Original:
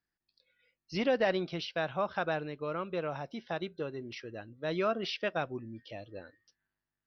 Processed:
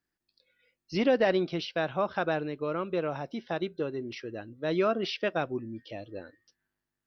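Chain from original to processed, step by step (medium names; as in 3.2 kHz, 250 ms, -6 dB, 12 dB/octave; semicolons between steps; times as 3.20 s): peaking EQ 320 Hz +5 dB 1.2 oct; trim +2 dB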